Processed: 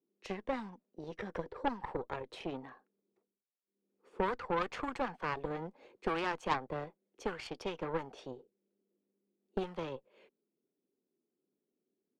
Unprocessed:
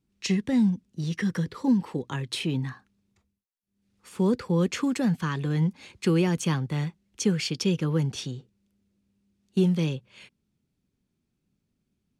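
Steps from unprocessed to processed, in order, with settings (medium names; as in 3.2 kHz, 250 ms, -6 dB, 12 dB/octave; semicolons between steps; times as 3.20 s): high-pass 280 Hz 12 dB/octave; auto-wah 400–1200 Hz, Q 2.5, up, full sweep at -22.5 dBFS; Chebyshev shaper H 3 -17 dB, 6 -19 dB, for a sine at -25 dBFS; trim +8.5 dB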